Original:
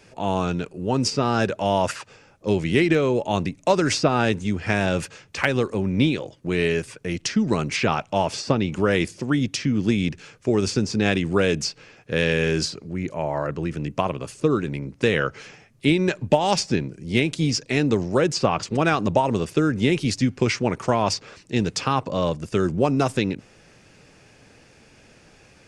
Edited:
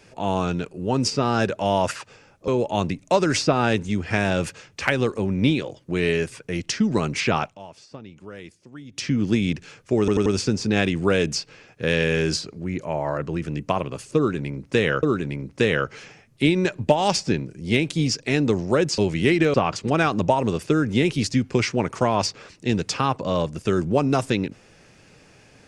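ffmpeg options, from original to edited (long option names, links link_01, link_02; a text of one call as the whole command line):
ffmpeg -i in.wav -filter_complex "[0:a]asplit=10[link_01][link_02][link_03][link_04][link_05][link_06][link_07][link_08][link_09][link_10];[link_01]atrim=end=2.482[link_11];[link_02]atrim=start=3.038:end=8.14,asetpts=PTS-STARTPTS,afade=type=out:start_time=4.972:duration=0.13:silence=0.112202[link_12];[link_03]atrim=start=8.14:end=9.47,asetpts=PTS-STARTPTS,volume=-19dB[link_13];[link_04]atrim=start=9.47:end=10.642,asetpts=PTS-STARTPTS,afade=type=in:duration=0.13:silence=0.112202[link_14];[link_05]atrim=start=10.548:end=10.642[link_15];[link_06]atrim=start=10.548:end=10.642[link_16];[link_07]atrim=start=10.548:end=15.322[link_17];[link_08]atrim=start=14.458:end=18.412[link_18];[link_09]atrim=start=2.478:end=3.042[link_19];[link_10]atrim=start=18.408[link_20];[link_12][link_13][link_14]concat=n=3:v=0:a=1[link_21];[link_11][link_21]acrossfade=duration=0.004:curve1=hsin:curve2=hsin[link_22];[link_22][link_15]acrossfade=duration=0.004:curve1=hsin:curve2=hsin[link_23];[link_23][link_16]acrossfade=duration=0.004:curve1=hsin:curve2=hsin[link_24];[link_24][link_17]acrossfade=duration=0.004:curve1=hsin:curve2=hsin[link_25];[link_25][link_18]acrossfade=duration=0.004:curve1=hsin:curve2=hsin[link_26];[link_26][link_19]acrossfade=duration=0.004:curve1=hsin:curve2=hsin[link_27];[link_27][link_20]acrossfade=duration=0.004:curve1=hsin:curve2=hsin" out.wav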